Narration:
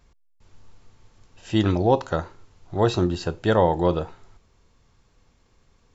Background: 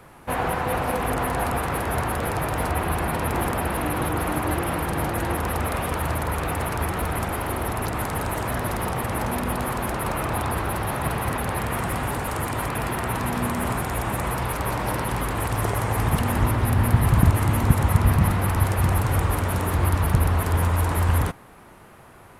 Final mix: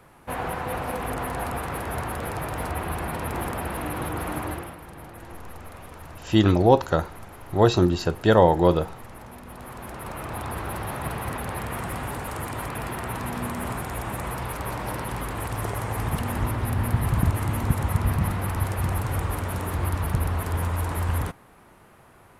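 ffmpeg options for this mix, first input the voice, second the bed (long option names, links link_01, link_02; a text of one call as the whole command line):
ffmpeg -i stem1.wav -i stem2.wav -filter_complex "[0:a]adelay=4800,volume=2.5dB[link_01];[1:a]volume=7dB,afade=type=out:start_time=4.42:duration=0.34:silence=0.251189,afade=type=in:start_time=9.45:duration=1.3:silence=0.251189[link_02];[link_01][link_02]amix=inputs=2:normalize=0" out.wav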